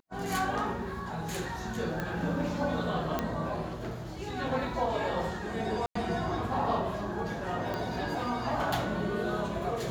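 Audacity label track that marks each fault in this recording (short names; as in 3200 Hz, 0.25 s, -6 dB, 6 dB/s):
2.000000	2.000000	pop -20 dBFS
3.190000	3.190000	pop -15 dBFS
5.860000	5.950000	gap 94 ms
7.740000	7.740000	pop -21 dBFS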